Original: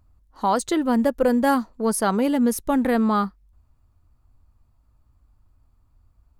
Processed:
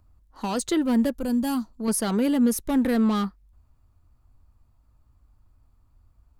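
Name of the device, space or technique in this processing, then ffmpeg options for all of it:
one-band saturation: -filter_complex "[0:a]asettb=1/sr,asplit=3[link_01][link_02][link_03];[link_01]atrim=end=1.164[link_04];[link_02]atrim=start=1.16:end=1.88,asetpts=PTS-STARTPTS,afade=type=in:duration=0.004:curve=qsin,afade=type=out:start_time=0.716:duration=0.004:curve=qsin,equalizer=frequency=500:width_type=o:width=1:gain=-11,equalizer=frequency=1000:width_type=o:width=1:gain=-3,equalizer=frequency=2000:width_type=o:width=1:gain=-11[link_05];[link_03]atrim=start=1.876[link_06];[link_04][link_05]acrossfade=duration=0.004:curve1=hsin:curve2=qsin[link_07];[link_07][link_06]acrossfade=duration=0.004:curve1=qsin:curve2=hsin,acrossover=split=420|2000[link_08][link_09][link_10];[link_09]asoftclip=type=tanh:threshold=-31.5dB[link_11];[link_08][link_11][link_10]amix=inputs=3:normalize=0"

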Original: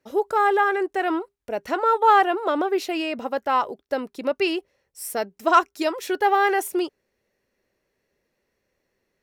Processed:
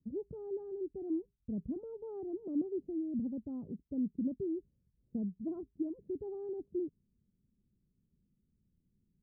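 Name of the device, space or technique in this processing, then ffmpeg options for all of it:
the neighbour's flat through the wall: -af "lowpass=frequency=210:width=0.5412,lowpass=frequency=210:width=1.3066,equalizer=frequency=180:width_type=o:width=0.77:gain=3.5,volume=6dB"

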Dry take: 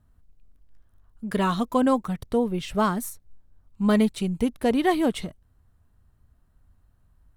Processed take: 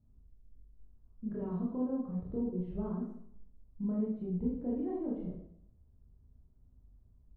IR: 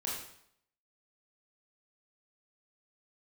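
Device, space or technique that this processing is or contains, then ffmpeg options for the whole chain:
television next door: -filter_complex "[0:a]acompressor=threshold=-31dB:ratio=4,lowpass=440[link_01];[1:a]atrim=start_sample=2205[link_02];[link_01][link_02]afir=irnorm=-1:irlink=0,volume=-4dB"

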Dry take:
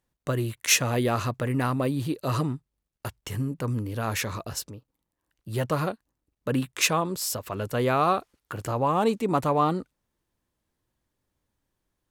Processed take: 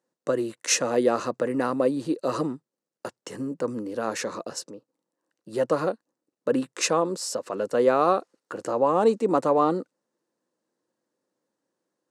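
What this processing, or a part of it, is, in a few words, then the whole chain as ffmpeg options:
television speaker: -af "highpass=frequency=190:width=0.5412,highpass=frequency=190:width=1.3066,equalizer=frequency=330:width_type=q:width=4:gain=4,equalizer=frequency=510:width_type=q:width=4:gain=9,equalizer=frequency=2300:width_type=q:width=4:gain=-7,equalizer=frequency=3300:width_type=q:width=4:gain=-8,lowpass=frequency=8900:width=0.5412,lowpass=frequency=8900:width=1.3066"

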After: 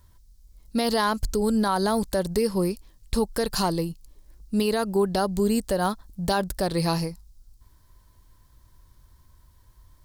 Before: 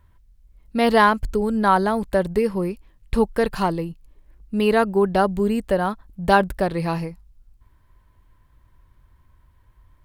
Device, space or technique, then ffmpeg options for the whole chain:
over-bright horn tweeter: -af "highshelf=frequency=3500:width_type=q:width=1.5:gain=11,alimiter=limit=-13.5dB:level=0:latency=1:release=130"

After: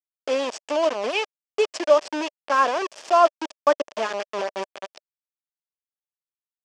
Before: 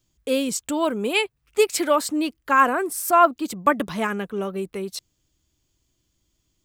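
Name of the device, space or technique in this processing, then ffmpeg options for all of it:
hand-held game console: -af "acrusher=bits=3:mix=0:aa=0.000001,highpass=420,equalizer=frequency=600:width_type=q:width=4:gain=8,equalizer=frequency=1400:width_type=q:width=4:gain=-5,equalizer=frequency=2100:width_type=q:width=4:gain=-5,equalizer=frequency=4000:width_type=q:width=4:gain=-9,lowpass=frequency=5500:width=0.5412,lowpass=frequency=5500:width=1.3066,volume=-1.5dB"

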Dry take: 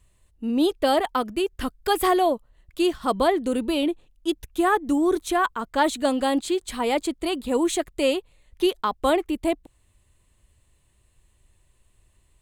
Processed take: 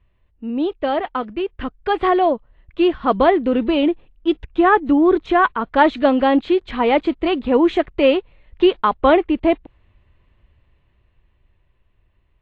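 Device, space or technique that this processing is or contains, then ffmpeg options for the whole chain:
action camera in a waterproof case: -af "lowpass=frequency=2900:width=0.5412,lowpass=frequency=2900:width=1.3066,dynaudnorm=framelen=330:gausssize=13:maxgain=10.5dB" -ar 24000 -c:a aac -b:a 48k

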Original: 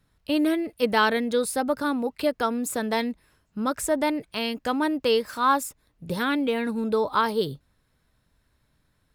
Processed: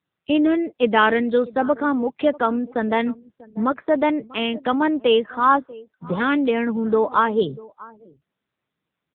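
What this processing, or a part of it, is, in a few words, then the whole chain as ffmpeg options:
mobile call with aggressive noise cancelling: -filter_complex "[0:a]highpass=frequency=150:width=0.5412,highpass=frequency=150:width=1.3066,asplit=2[link_01][link_02];[link_02]adelay=641.4,volume=-20dB,highshelf=frequency=4000:gain=-14.4[link_03];[link_01][link_03]amix=inputs=2:normalize=0,afftdn=noise_reduction=20:noise_floor=-45,volume=5.5dB" -ar 8000 -c:a libopencore_amrnb -b:a 7950

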